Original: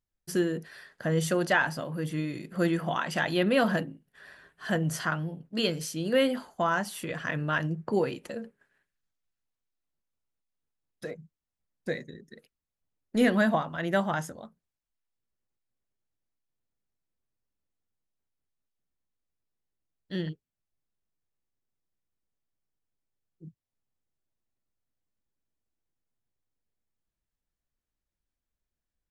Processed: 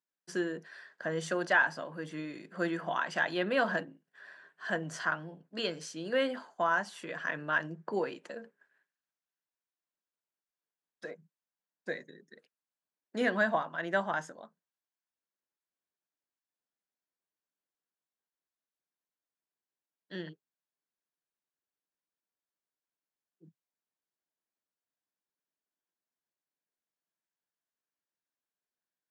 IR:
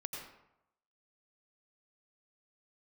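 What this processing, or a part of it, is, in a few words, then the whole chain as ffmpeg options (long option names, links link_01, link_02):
television speaker: -af "highpass=frequency=190:width=0.5412,highpass=frequency=190:width=1.3066,equalizer=frequency=230:width_type=q:width=4:gain=-5,equalizer=frequency=660:width_type=q:width=4:gain=3,equalizer=frequency=1000:width_type=q:width=4:gain=5,equalizer=frequency=1600:width_type=q:width=4:gain=7,lowpass=frequency=8000:width=0.5412,lowpass=frequency=8000:width=1.3066,volume=-6dB"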